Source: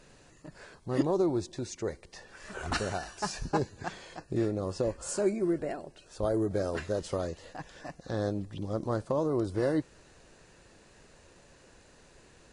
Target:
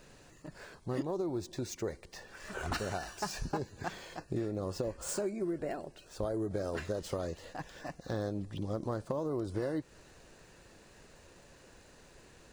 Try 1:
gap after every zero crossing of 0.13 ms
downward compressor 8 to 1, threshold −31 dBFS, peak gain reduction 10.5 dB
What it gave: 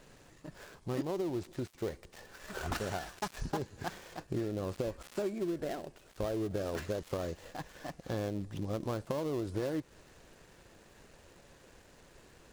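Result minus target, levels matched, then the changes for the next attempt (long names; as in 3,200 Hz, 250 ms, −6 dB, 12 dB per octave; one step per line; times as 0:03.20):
gap after every zero crossing: distortion +13 dB
change: gap after every zero crossing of 0.024 ms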